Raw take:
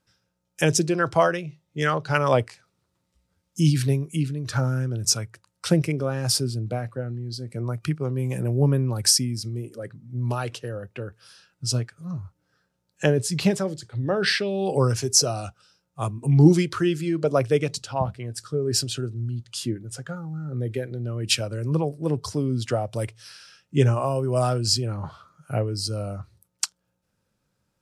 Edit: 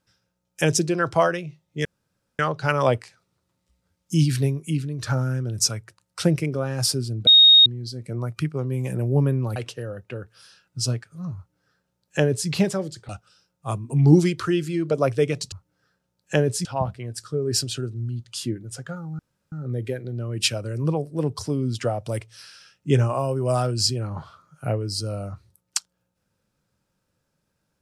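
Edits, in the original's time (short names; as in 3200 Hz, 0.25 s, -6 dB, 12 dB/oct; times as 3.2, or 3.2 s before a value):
1.85 insert room tone 0.54 s
6.73–7.12 bleep 3730 Hz -8.5 dBFS
9.02–10.42 cut
12.22–13.35 copy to 17.85
13.95–15.42 cut
20.39 insert room tone 0.33 s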